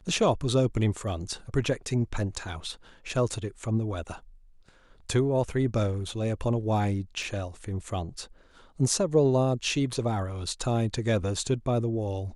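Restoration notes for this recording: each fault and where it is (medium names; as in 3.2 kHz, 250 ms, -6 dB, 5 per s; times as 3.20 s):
7.23 s: dropout 2.2 ms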